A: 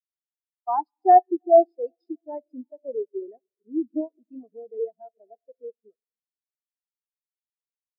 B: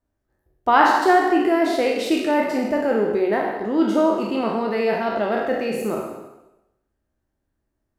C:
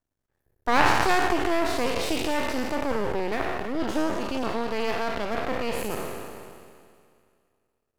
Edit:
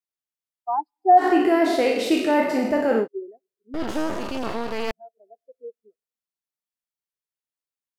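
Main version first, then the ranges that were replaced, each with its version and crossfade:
A
1.21–3.03 from B, crossfade 0.10 s
3.74–4.91 from C

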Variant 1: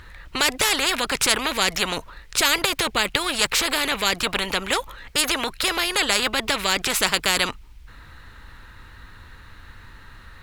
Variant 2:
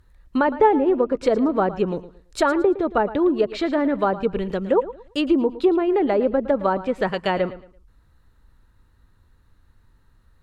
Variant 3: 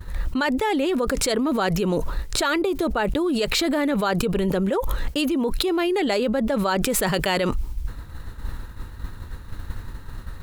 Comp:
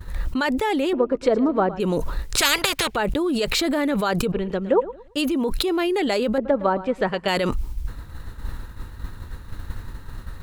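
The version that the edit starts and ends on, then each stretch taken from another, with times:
3
0.93–1.8 from 2
2.37–2.96 from 1
4.32–5.17 from 2
6.38–7.28 from 2

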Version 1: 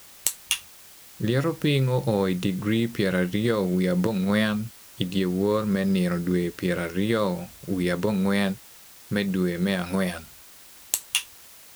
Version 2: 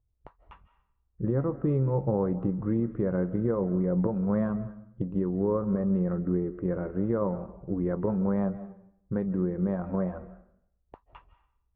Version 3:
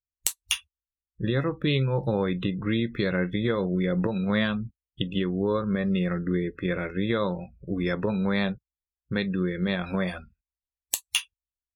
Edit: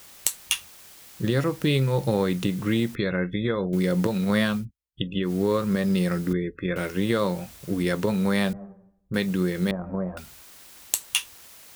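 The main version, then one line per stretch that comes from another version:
1
2.95–3.73 from 3
4.61–5.27 from 3, crossfade 0.10 s
6.33–6.76 from 3
8.53–9.14 from 2
9.71–10.17 from 2

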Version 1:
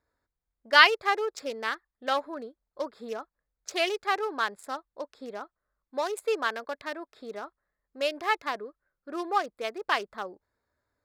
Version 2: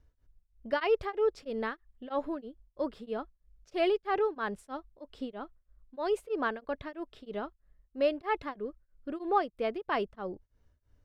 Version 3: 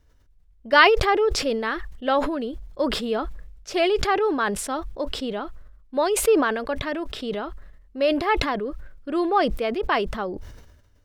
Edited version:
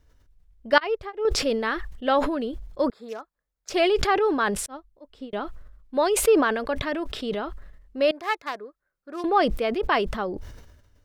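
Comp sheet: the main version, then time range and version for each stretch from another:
3
0.78–1.25 from 2
2.9–3.7 from 1
4.66–5.33 from 2
8.11–9.24 from 1

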